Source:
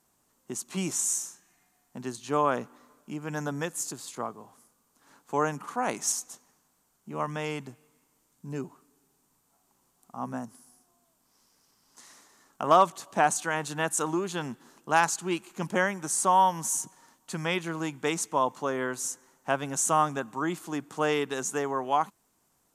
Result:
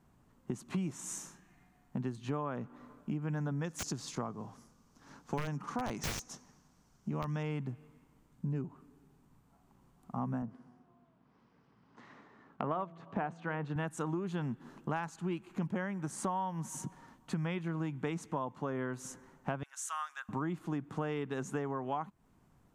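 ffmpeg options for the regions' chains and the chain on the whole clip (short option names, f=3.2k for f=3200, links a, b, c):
-filter_complex "[0:a]asettb=1/sr,asplit=3[a][b][c];[a]atrim=end=3.644[d];[b]atrim=start=3.64:end=7.43,asetpts=PTS-STARTPTS,afade=t=in:d=0.004:c=qsin,afade=t=out:st=3.786:d=0.004:c=qsin,equalizer=f=5.7k:t=o:w=0.81:g=13.5,aeval=exprs='(mod(6.31*val(0)+1,2)-1)/6.31':c=same[e];[c]atrim=start=7.426[f];[d][e]acrossfade=d=0.004:c1=hsin:c2=qsin[g];[g][f]acrossfade=d=0.004:c1=qsin:c2=hsin,asettb=1/sr,asplit=3[h][i][j];[h]atrim=end=10.424[k];[i]atrim=start=10.42:end=13.76,asetpts=PTS-STARTPTS,afade=t=in:d=0.004:c=qsin,afade=t=out:st=3.336:d=0.004:c=qsin,highpass=110,lowpass=2.9k,equalizer=f=450:w=5.4:g=3.5,bandreject=f=166.6:t=h:w=4,bandreject=f=333.2:t=h:w=4,bandreject=f=499.8:t=h:w=4,bandreject=f=666.4:t=h:w=4[l];[j]atrim=start=13.756[m];[k][l]acrossfade=d=0.004:c1=hsin:c2=qsin[n];[n][m]acrossfade=d=0.004:c1=qsin:c2=hsin,asettb=1/sr,asplit=3[o][p][q];[o]atrim=end=19.634[r];[p]atrim=start=19.63:end=20.29,asetpts=PTS-STARTPTS,afade=t=in:d=0.004:c=qsin,afade=t=out:st=0.656:d=0.004:c=qsin,highpass=f=1.5k:w=0.5412,highpass=f=1.5k:w=1.3066,equalizer=f=2.3k:w=1.1:g=-7[s];[q]atrim=start=20.286[t];[r][s]acrossfade=d=0.004:c1=hsin:c2=qsin[u];[u][t]acrossfade=d=0.004:c1=qsin:c2=hsin,bass=f=250:g=13,treble=f=4k:g=-15,acompressor=threshold=-35dB:ratio=6,volume=1.5dB"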